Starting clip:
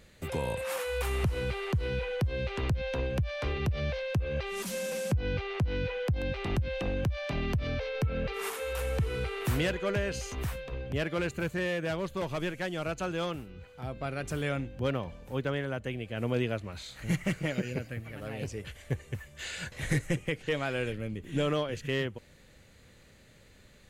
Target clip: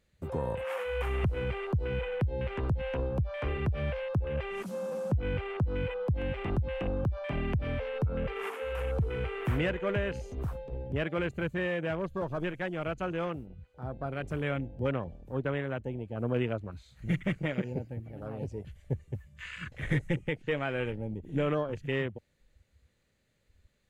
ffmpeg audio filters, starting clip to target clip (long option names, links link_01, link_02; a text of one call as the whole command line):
ffmpeg -i in.wav -af "afwtdn=0.0112" out.wav